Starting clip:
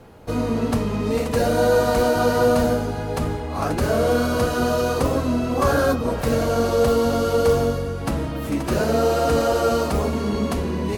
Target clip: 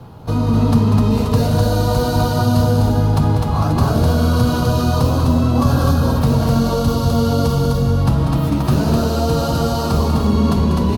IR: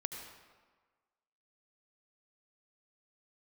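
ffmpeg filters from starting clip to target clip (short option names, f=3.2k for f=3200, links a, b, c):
-filter_complex "[0:a]acrossover=split=280|3000[a][b][c];[b]acompressor=threshold=-24dB:ratio=6[d];[a][d][c]amix=inputs=3:normalize=0,equalizer=f=125:t=o:w=1:g=11,equalizer=f=500:t=o:w=1:g=-5,equalizer=f=1k:t=o:w=1:g=6,equalizer=f=2k:t=o:w=1:g=-9,equalizer=f=4k:t=o:w=1:g=4,equalizer=f=8k:t=o:w=1:g=-6,asplit=2[e][f];[f]alimiter=limit=-17dB:level=0:latency=1,volume=-0.5dB[g];[e][g]amix=inputs=2:normalize=0,aecho=1:1:192.4|253.6:0.398|0.708,volume=-1dB"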